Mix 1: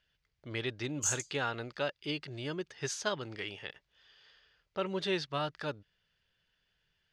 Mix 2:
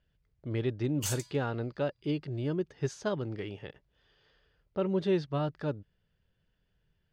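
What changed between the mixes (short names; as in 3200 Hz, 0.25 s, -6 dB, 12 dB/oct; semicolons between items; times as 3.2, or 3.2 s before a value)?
background: remove band-pass 6700 Hz, Q 6.9; master: add tilt shelf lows +9.5 dB, about 820 Hz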